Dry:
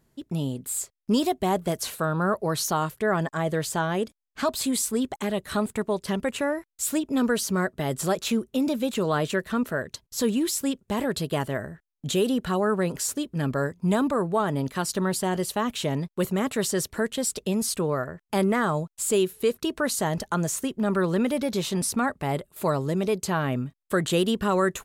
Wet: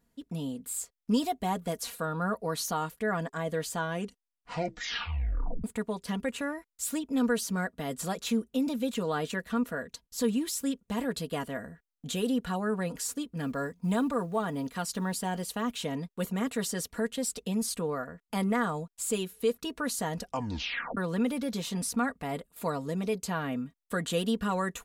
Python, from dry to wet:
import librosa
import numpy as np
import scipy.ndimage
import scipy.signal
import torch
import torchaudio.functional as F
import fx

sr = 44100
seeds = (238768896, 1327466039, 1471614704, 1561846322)

y = fx.quant_companded(x, sr, bits=8, at=(13.37, 15.71))
y = fx.edit(y, sr, fx.tape_stop(start_s=3.86, length_s=1.78),
    fx.tape_stop(start_s=20.17, length_s=0.8), tone=tone)
y = fx.notch(y, sr, hz=400.0, q=12.0)
y = y + 0.6 * np.pad(y, (int(4.2 * sr / 1000.0), 0))[:len(y)]
y = y * librosa.db_to_amplitude(-7.0)